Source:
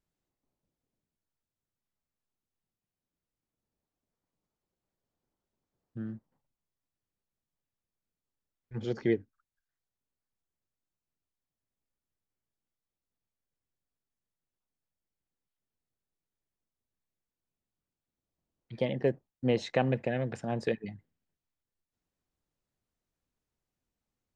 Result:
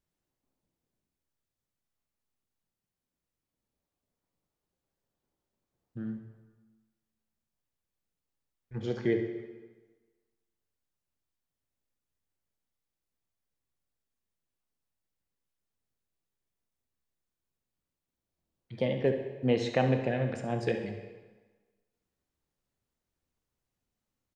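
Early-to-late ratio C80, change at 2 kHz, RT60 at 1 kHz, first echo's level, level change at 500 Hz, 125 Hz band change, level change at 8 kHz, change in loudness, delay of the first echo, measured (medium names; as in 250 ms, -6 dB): 9.0 dB, +1.0 dB, 1.4 s, -11.5 dB, +1.5 dB, +2.0 dB, no reading, +1.0 dB, 68 ms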